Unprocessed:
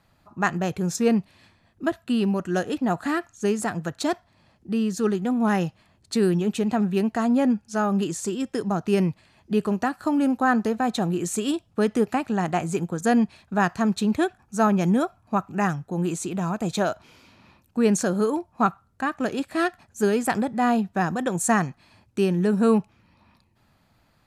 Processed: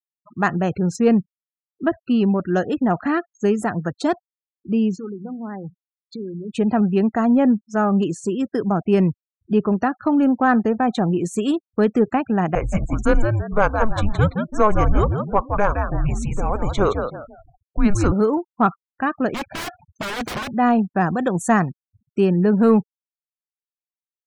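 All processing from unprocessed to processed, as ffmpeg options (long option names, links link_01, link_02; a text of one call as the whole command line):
ffmpeg -i in.wav -filter_complex "[0:a]asettb=1/sr,asplit=3[link_01][link_02][link_03];[link_01]atrim=end=4.964[link_04];[link_02]atrim=start=4.96:end=6.53,asetpts=PTS-STARTPTS,afade=type=in:duration=0.004:curve=qsin,afade=type=out:start_time=1.566:duration=0.004:curve=qsin,lowpass=frequency=2700:poles=1,acompressor=threshold=-35dB:ratio=4:attack=3.2:release=140:knee=1:detection=peak,bandreject=frequency=60:width_type=h:width=6,bandreject=frequency=120:width_type=h:width=6,bandreject=frequency=180:width_type=h:width=6,bandreject=frequency=240:width_type=h:width=6[link_05];[link_03]atrim=start=6.526[link_06];[link_04][link_05]acrossfade=duration=0.004:curve1=hsin:curve2=qsin[link_07];[link_07][link_06]acrossfade=duration=0.004:curve1=qsin:curve2=hsin,asettb=1/sr,asplit=3[link_08][link_09][link_10];[link_08]atrim=end=12.554[link_11];[link_09]atrim=start=12.55:end=18.12,asetpts=PTS-STARTPTS,afade=type=in:duration=0.004:curve=qsin,afade=type=out:start_time=5.566:duration=0.004:curve=qsin,adynamicequalizer=threshold=0.0178:dfrequency=1200:dqfactor=1.2:tfrequency=1200:tqfactor=1.2:attack=5:release=100:ratio=0.375:range=2:mode=boostabove:tftype=bell,asplit=5[link_12][link_13][link_14][link_15][link_16];[link_13]adelay=168,afreqshift=82,volume=-7dB[link_17];[link_14]adelay=336,afreqshift=164,volume=-17.2dB[link_18];[link_15]adelay=504,afreqshift=246,volume=-27.3dB[link_19];[link_16]adelay=672,afreqshift=328,volume=-37.5dB[link_20];[link_12][link_17][link_18][link_19][link_20]amix=inputs=5:normalize=0,atrim=end_sample=245637,afreqshift=-210[link_21];[link_10]atrim=start=18.116[link_22];[link_11][link_21]acrossfade=duration=0.004:curve1=hsin:curve2=qsin[link_23];[link_23][link_22]acrossfade=duration=0.004:curve1=qsin:curve2=hsin,asettb=1/sr,asplit=3[link_24][link_25][link_26];[link_24]atrim=end=19.344[link_27];[link_25]atrim=start=19.34:end=20.51,asetpts=PTS-STARTPTS,afade=type=in:duration=0.004:curve=qsin,afade=type=out:start_time=1.166:duration=0.004:curve=qsin,lowpass=frequency=4800:width=0.5412,lowpass=frequency=4800:width=1.3066,aecho=1:1:1.3:0.76,atrim=end_sample=51597,aeval=exprs='(mod(16.8*val(0)+1,2)-1)/16.8':channel_layout=same[link_28];[link_26]atrim=start=20.506[link_29];[link_27][link_28]acrossfade=duration=0.004:curve1=hsin:curve2=qsin[link_30];[link_30][link_29]acrossfade=duration=0.004:curve1=qsin:curve2=hsin,afftfilt=real='re*gte(hypot(re,im),0.0141)':imag='im*gte(hypot(re,im),0.0141)':win_size=1024:overlap=0.75,acontrast=60,highshelf=frequency=3500:gain=-12,volume=-1dB" out.wav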